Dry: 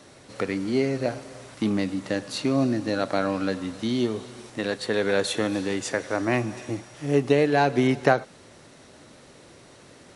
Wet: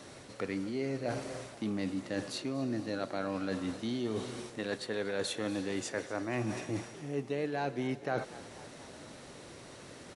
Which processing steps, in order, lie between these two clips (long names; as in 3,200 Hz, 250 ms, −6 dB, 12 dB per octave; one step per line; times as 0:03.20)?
reversed playback
downward compressor 6 to 1, threshold −32 dBFS, peak gain reduction 18 dB
reversed playback
echo with shifted repeats 240 ms, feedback 61%, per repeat +53 Hz, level −18 dB